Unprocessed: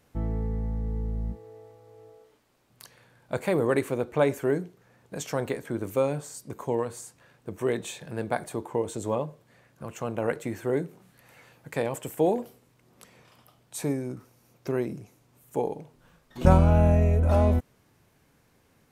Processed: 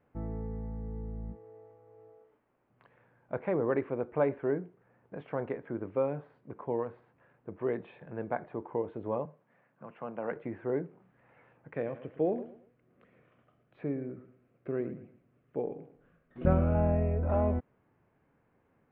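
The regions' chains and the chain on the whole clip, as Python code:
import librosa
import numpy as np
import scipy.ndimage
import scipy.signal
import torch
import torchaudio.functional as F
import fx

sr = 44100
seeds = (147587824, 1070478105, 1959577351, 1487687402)

y = fx.chain(x, sr, fx.highpass(hz=150.0, slope=24),
    fx.peak_eq(hz=360.0, db=-6.0, octaves=0.99), at=(9.25, 10.32))
y = fx.chain(y, sr, fx.peak_eq(hz=900.0, db=-13.5, octaves=0.41),
    fx.echo_feedback(ms=113, feedback_pct=31, wet_db=-13.0), at=(11.74, 16.75))
y = scipy.signal.sosfilt(scipy.signal.bessel(8, 1500.0, 'lowpass', norm='mag', fs=sr, output='sos'), y)
y = fx.low_shelf(y, sr, hz=130.0, db=-7.0)
y = y * librosa.db_to_amplitude(-4.0)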